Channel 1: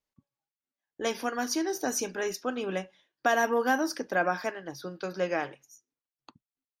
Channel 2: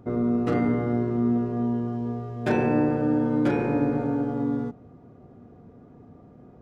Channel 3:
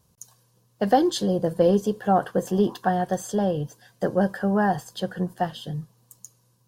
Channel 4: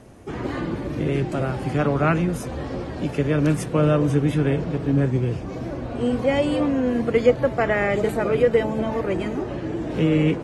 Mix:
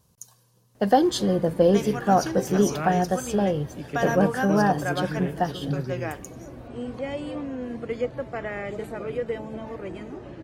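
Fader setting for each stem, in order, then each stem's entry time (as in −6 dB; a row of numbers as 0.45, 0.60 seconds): −2.5 dB, muted, +0.5 dB, −11.0 dB; 0.70 s, muted, 0.00 s, 0.75 s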